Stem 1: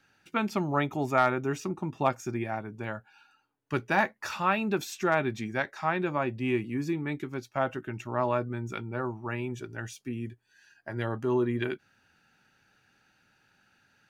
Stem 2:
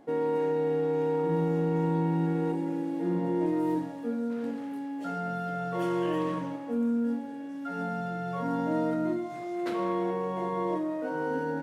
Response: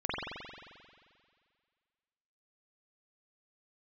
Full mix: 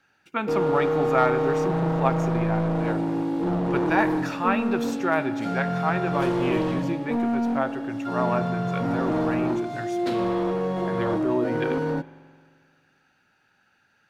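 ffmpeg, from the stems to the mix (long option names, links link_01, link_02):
-filter_complex "[0:a]volume=-4dB,asplit=2[link_01][link_02];[link_02]volume=-20.5dB[link_03];[1:a]equalizer=frequency=125:width_type=o:width=1:gain=10,equalizer=frequency=1000:width_type=o:width=1:gain=-8,equalizer=frequency=2000:width_type=o:width=1:gain=-5,equalizer=frequency=4000:width_type=o:width=1:gain=7,volume=27.5dB,asoftclip=hard,volume=-27.5dB,adelay=400,volume=2.5dB,asplit=2[link_04][link_05];[link_05]volume=-23dB[link_06];[2:a]atrim=start_sample=2205[link_07];[link_03][link_06]amix=inputs=2:normalize=0[link_08];[link_08][link_07]afir=irnorm=-1:irlink=0[link_09];[link_01][link_04][link_09]amix=inputs=3:normalize=0,equalizer=frequency=940:width=0.34:gain=6"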